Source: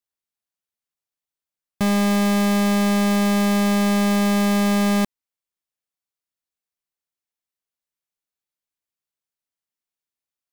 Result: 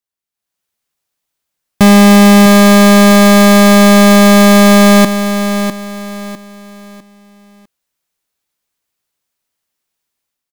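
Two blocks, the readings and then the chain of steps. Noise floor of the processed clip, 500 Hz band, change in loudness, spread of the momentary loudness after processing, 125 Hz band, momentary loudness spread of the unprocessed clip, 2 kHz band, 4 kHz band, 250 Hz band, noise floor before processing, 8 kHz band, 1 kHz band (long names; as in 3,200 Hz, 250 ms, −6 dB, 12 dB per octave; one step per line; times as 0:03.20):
−81 dBFS, +16.0 dB, +13.0 dB, 17 LU, can't be measured, 3 LU, +15.0 dB, +15.0 dB, +13.0 dB, below −85 dBFS, +15.0 dB, +14.0 dB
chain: automatic gain control gain up to 13 dB
on a send: repeating echo 652 ms, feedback 32%, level −9 dB
on the sum: level +1.5 dB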